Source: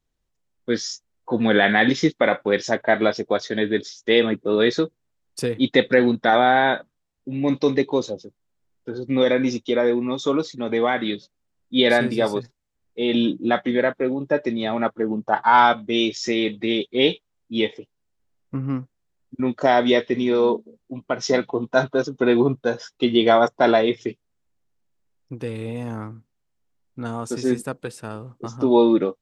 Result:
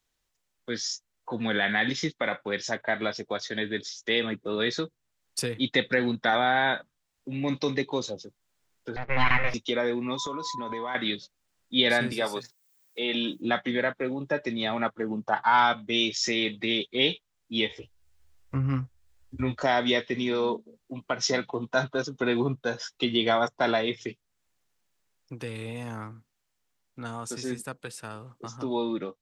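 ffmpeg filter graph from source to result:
-filter_complex "[0:a]asettb=1/sr,asplit=3[s0][s1][s2];[s0]atrim=end=8.964[s3];[s1]atrim=start=8.96:end=9.54,asetpts=PTS-STARTPTS,afade=t=in:d=0.004:c=qsin,afade=t=out:st=0.576:d=0.004:c=qsin,aeval=exprs='abs(val(0))':c=same,lowpass=f=2100:t=q:w=3.2[s4];[s2]atrim=start=9.536[s5];[s3][s4]acrossfade=d=0.004:c1=hsin:c2=qsin[s6];[s6][s5]acrossfade=d=0.004:c1=qsin:c2=hsin,asettb=1/sr,asplit=3[s7][s8][s9];[s7]atrim=end=10.174[s10];[s8]atrim=start=10.17:end=10.95,asetpts=PTS-STARTPTS,afade=t=in:d=0.004:c=qsin,afade=t=out:st=0.776:d=0.004:c=qsin,equalizer=f=2600:w=1.9:g=-8.5,acompressor=threshold=0.0398:ratio=4:attack=3.2:release=140:knee=1:detection=peak,aeval=exprs='val(0)+0.02*sin(2*PI*1000*n/s)':c=same[s11];[s9]atrim=start=10.946[s12];[s10][s11]acrossfade=d=0.004:c1=hsin:c2=qsin[s13];[s13][s12]acrossfade=d=0.004:c1=qsin:c2=hsin,asettb=1/sr,asplit=3[s14][s15][s16];[s14]atrim=end=12.124[s17];[s15]atrim=start=12.12:end=13.42,asetpts=PTS-STARTPTS,afade=t=in:d=0.004:c=qsin,afade=t=out:st=1.296:d=0.004:c=qsin,aemphasis=mode=production:type=bsi,acrossover=split=2900[s18][s19];[s19]acompressor=threshold=0.01:ratio=4:attack=1:release=60[s20];[s18][s20]amix=inputs=2:normalize=0,highpass=100[s21];[s16]atrim=start=13.416[s22];[s17][s21]acrossfade=d=0.004:c1=hsin:c2=qsin[s23];[s23][s22]acrossfade=d=0.004:c1=qsin:c2=hsin,asettb=1/sr,asplit=3[s24][s25][s26];[s24]atrim=end=17.694[s27];[s25]atrim=start=17.69:end=19.63,asetpts=PTS-STARTPTS,afade=t=in:d=0.004:c=qsin,afade=t=out:st=1.936:d=0.004:c=qsin,lowshelf=f=120:t=q:w=3:g=11.5,asplit=2[s28][s29];[s29]adelay=15,volume=0.708[s30];[s28][s30]amix=inputs=2:normalize=0,atrim=end_sample=85554[s31];[s26]atrim=start=19.626[s32];[s27][s31]acrossfade=d=0.004:c1=hsin:c2=qsin[s33];[s33][s32]acrossfade=d=0.004:c1=qsin:c2=hsin,acrossover=split=200[s34][s35];[s35]acompressor=threshold=0.00398:ratio=1.5[s36];[s34][s36]amix=inputs=2:normalize=0,tiltshelf=f=640:g=-7,dynaudnorm=f=750:g=13:m=1.5"

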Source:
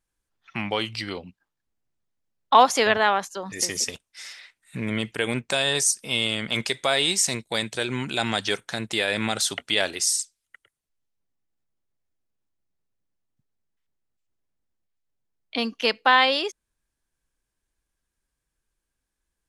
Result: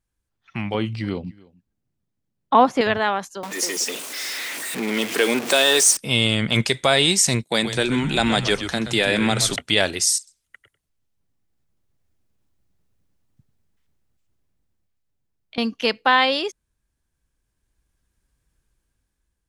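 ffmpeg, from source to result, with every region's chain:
-filter_complex "[0:a]asettb=1/sr,asplit=3[s0][s1][s2];[s0]atrim=end=0.744[s3];[s1]atrim=start=0.74:end=2.81,asetpts=PTS-STARTPTS,afade=t=in:d=0.004:c=qsin,afade=t=out:st=2.066:d=0.004:c=qsin,acrossover=split=2800[s4][s5];[s5]acompressor=threshold=0.00891:ratio=4:attack=1:release=60[s6];[s4][s6]amix=inputs=2:normalize=0,equalizer=f=210:t=o:w=2.2:g=7.5,aecho=1:1:296:0.0631,atrim=end_sample=91287[s7];[s2]atrim=start=2.806[s8];[s3][s7]acrossfade=d=0.004:c1=hsin:c2=qsin[s9];[s9][s8]acrossfade=d=0.004:c1=qsin:c2=hsin,asettb=1/sr,asplit=3[s10][s11][s12];[s10]atrim=end=3.434[s13];[s11]atrim=start=3.43:end=5.97,asetpts=PTS-STARTPTS,afade=t=in:d=0.004:c=qsin,afade=t=out:st=2.536:d=0.004:c=qsin,aeval=exprs='val(0)+0.5*0.0562*sgn(val(0))':c=same,highpass=f=280:w=0.5412,highpass=f=280:w=1.3066[s14];[s12]atrim=start=5.966[s15];[s13][s14]acrossfade=d=0.004:c1=hsin:c2=qsin[s16];[s16][s15]acrossfade=d=0.004:c1=qsin:c2=hsin,asettb=1/sr,asplit=3[s17][s18][s19];[s17]atrim=end=7.434[s20];[s18]atrim=start=7.43:end=9.56,asetpts=PTS-STARTPTS,afade=t=in:d=0.004:c=qsin,afade=t=out:st=2.126:d=0.004:c=qsin,highpass=f=160:w=0.5412,highpass=f=160:w=1.3066,asplit=5[s21][s22][s23][s24][s25];[s22]adelay=126,afreqshift=-100,volume=0.316[s26];[s23]adelay=252,afreqshift=-200,volume=0.107[s27];[s24]adelay=378,afreqshift=-300,volume=0.0367[s28];[s25]adelay=504,afreqshift=-400,volume=0.0124[s29];[s21][s26][s27][s28][s29]amix=inputs=5:normalize=0,atrim=end_sample=93933[s30];[s19]atrim=start=9.556[s31];[s20][s30]acrossfade=d=0.004:c1=hsin:c2=qsin[s32];[s32][s31]acrossfade=d=0.004:c1=qsin:c2=hsin,asettb=1/sr,asplit=3[s33][s34][s35];[s33]atrim=end=10.184[s36];[s34]atrim=start=10.18:end=15.58,asetpts=PTS-STARTPTS,afade=t=in:d=0.004:c=qsin,afade=t=out:st=5.396:d=0.004:c=qsin,acompressor=threshold=0.0112:ratio=12:attack=3.2:release=140:knee=1:detection=peak,aecho=1:1:94:0.188,atrim=end_sample=238140[s37];[s35]atrim=start=15.576[s38];[s36][s37]acrossfade=d=0.004:c1=hsin:c2=qsin[s39];[s39][s38]acrossfade=d=0.004:c1=qsin:c2=hsin,equalizer=f=79:w=0.38:g=9.5,dynaudnorm=f=580:g=5:m=3.76,volume=0.794"

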